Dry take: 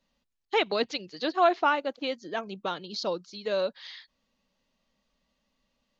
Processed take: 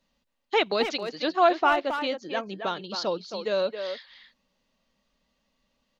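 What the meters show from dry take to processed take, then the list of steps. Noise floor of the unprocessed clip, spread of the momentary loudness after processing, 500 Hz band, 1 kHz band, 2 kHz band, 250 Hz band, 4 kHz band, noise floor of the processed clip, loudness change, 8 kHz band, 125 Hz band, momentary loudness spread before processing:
-78 dBFS, 10 LU, +2.5 dB, +2.5 dB, +2.5 dB, +2.5 dB, +2.5 dB, -76 dBFS, +2.5 dB, n/a, +2.0 dB, 11 LU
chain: speakerphone echo 0.27 s, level -7 dB; gain +2 dB

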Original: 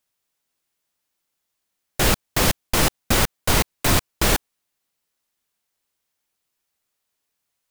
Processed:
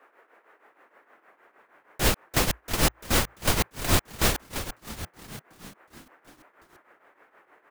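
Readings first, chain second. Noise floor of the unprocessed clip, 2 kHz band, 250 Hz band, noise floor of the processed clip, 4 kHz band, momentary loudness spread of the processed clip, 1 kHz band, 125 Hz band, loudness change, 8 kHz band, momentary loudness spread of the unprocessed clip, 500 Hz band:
-79 dBFS, -5.0 dB, -5.0 dB, -66 dBFS, -4.5 dB, 16 LU, -5.0 dB, -4.5 dB, -5.5 dB, -5.0 dB, 1 LU, -5.0 dB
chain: band noise 310–1900 Hz -54 dBFS; frequency-shifting echo 0.343 s, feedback 60%, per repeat -57 Hz, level -11 dB; tremolo triangle 6.4 Hz, depth 80%; gain -1.5 dB

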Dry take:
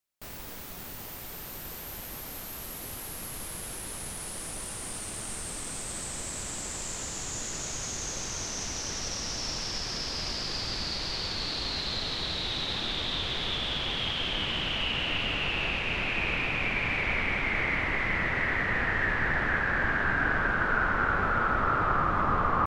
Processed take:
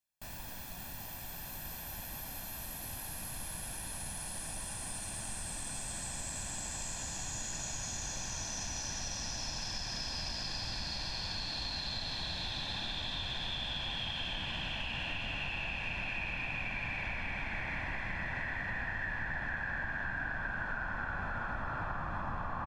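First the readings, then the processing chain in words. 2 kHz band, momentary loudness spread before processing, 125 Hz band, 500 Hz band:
-9.0 dB, 12 LU, -6.0 dB, -11.5 dB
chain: comb 1.2 ms, depth 64%; compressor, threshold -29 dBFS, peak gain reduction 9.5 dB; gain -5 dB

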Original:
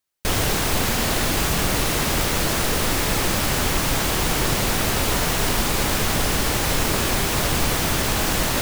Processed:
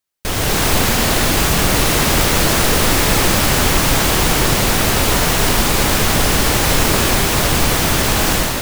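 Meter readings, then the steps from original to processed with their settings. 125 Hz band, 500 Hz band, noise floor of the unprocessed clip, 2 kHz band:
+6.5 dB, +6.5 dB, -23 dBFS, +6.5 dB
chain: AGC

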